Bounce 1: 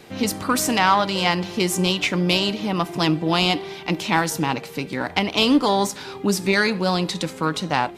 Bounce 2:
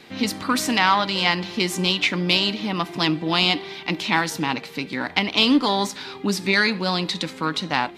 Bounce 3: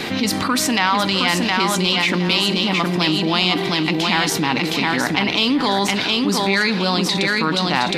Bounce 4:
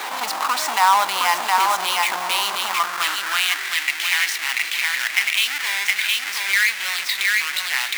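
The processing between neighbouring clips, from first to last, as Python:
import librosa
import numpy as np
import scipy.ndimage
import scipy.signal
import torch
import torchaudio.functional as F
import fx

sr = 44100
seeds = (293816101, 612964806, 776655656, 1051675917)

y1 = fx.graphic_eq_10(x, sr, hz=(250, 1000, 2000, 4000), db=(7, 4, 7, 9))
y1 = y1 * librosa.db_to_amplitude(-7.0)
y2 = fx.echo_feedback(y1, sr, ms=715, feedback_pct=28, wet_db=-5.0)
y2 = fx.env_flatten(y2, sr, amount_pct=70)
y2 = y2 * librosa.db_to_amplitude(-2.5)
y3 = fx.halfwave_hold(y2, sr)
y3 = fx.filter_sweep_highpass(y3, sr, from_hz=920.0, to_hz=2000.0, start_s=2.4, end_s=3.86, q=2.8)
y3 = y3 * librosa.db_to_amplitude(-7.0)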